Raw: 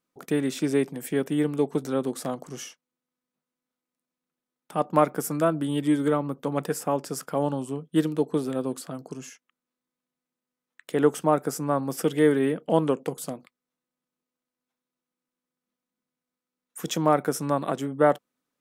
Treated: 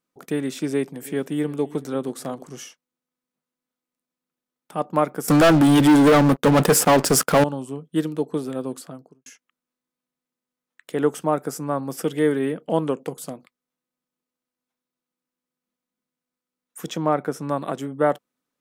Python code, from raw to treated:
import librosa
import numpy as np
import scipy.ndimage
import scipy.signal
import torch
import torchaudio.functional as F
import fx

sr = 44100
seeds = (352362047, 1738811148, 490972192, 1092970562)

y = fx.echo_feedback(x, sr, ms=331, feedback_pct=26, wet_db=-20, at=(1.0, 2.48), fade=0.02)
y = fx.leveller(y, sr, passes=5, at=(5.28, 7.44))
y = fx.studio_fade_out(y, sr, start_s=8.78, length_s=0.48)
y = fx.high_shelf(y, sr, hz=fx.line((16.86, 6800.0), (17.48, 4400.0)), db=-11.0, at=(16.86, 17.48), fade=0.02)